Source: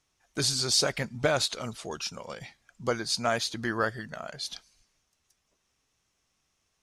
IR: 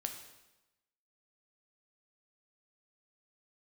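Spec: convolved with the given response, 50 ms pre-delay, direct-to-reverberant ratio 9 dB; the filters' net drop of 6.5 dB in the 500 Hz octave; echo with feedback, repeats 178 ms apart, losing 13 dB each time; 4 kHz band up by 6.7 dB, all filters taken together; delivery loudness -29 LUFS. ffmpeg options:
-filter_complex "[0:a]equalizer=f=500:t=o:g=-8.5,equalizer=f=4000:t=o:g=8,aecho=1:1:178|356|534:0.224|0.0493|0.0108,asplit=2[s0][s1];[1:a]atrim=start_sample=2205,adelay=50[s2];[s1][s2]afir=irnorm=-1:irlink=0,volume=0.376[s3];[s0][s3]amix=inputs=2:normalize=0,volume=0.562"

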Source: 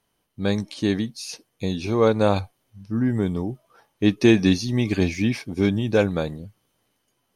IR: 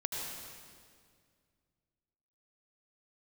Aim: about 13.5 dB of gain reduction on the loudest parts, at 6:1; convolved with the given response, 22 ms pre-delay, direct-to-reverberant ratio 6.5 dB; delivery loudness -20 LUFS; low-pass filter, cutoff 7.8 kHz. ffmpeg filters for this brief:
-filter_complex "[0:a]lowpass=7800,acompressor=threshold=0.0501:ratio=6,asplit=2[s0][s1];[1:a]atrim=start_sample=2205,adelay=22[s2];[s1][s2]afir=irnorm=-1:irlink=0,volume=0.316[s3];[s0][s3]amix=inputs=2:normalize=0,volume=3.55"

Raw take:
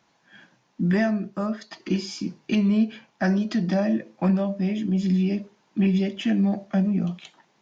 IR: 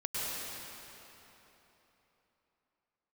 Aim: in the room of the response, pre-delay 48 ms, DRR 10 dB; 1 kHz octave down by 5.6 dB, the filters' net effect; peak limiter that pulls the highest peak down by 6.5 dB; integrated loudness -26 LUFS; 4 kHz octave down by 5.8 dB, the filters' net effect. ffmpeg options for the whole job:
-filter_complex "[0:a]equalizer=f=1000:t=o:g=-8.5,equalizer=f=4000:t=o:g=-8,alimiter=limit=0.1:level=0:latency=1,asplit=2[s0][s1];[1:a]atrim=start_sample=2205,adelay=48[s2];[s1][s2]afir=irnorm=-1:irlink=0,volume=0.158[s3];[s0][s3]amix=inputs=2:normalize=0,volume=1.26"

